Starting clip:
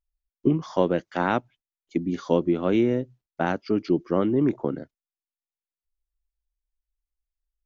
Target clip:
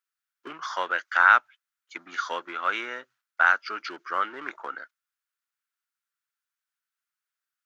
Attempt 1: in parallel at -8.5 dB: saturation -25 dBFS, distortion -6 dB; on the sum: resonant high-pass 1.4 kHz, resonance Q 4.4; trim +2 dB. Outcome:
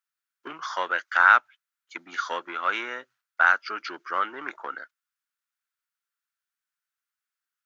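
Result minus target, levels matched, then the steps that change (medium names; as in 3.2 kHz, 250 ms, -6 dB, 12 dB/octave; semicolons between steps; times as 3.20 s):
saturation: distortion -4 dB
change: saturation -35 dBFS, distortion -2 dB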